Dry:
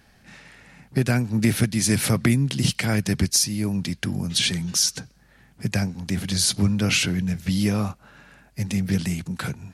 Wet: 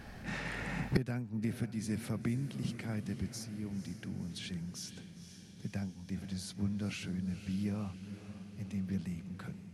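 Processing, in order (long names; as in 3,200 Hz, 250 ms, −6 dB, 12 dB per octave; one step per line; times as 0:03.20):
automatic gain control gain up to 4.5 dB
dynamic equaliser 190 Hz, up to +4 dB, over −28 dBFS, Q 2.9
on a send: feedback delay with all-pass diffusion 502 ms, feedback 63%, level −11.5 dB
on the sum: gate with flip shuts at −22 dBFS, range −29 dB
high-shelf EQ 2,300 Hz −9.5 dB
level +8.5 dB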